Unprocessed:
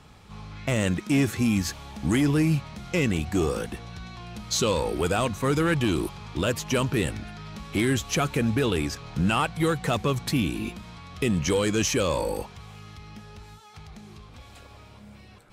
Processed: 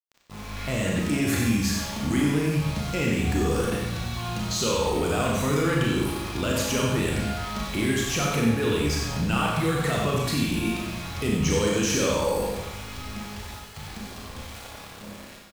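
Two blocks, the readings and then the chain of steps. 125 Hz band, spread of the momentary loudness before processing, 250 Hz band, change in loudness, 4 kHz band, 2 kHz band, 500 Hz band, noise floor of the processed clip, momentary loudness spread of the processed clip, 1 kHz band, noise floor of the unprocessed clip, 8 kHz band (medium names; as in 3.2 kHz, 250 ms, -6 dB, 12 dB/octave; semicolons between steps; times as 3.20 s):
+1.0 dB, 18 LU, +0.5 dB, +0.5 dB, +2.0 dB, +1.5 dB, +1.0 dB, -43 dBFS, 15 LU, +1.5 dB, -49 dBFS, +2.5 dB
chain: level rider gain up to 5 dB; peak limiter -20.5 dBFS, peak gain reduction 10.5 dB; small samples zeroed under -39.5 dBFS; echo from a far wall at 16 m, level -6 dB; Schroeder reverb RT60 0.84 s, combs from 27 ms, DRR -1.5 dB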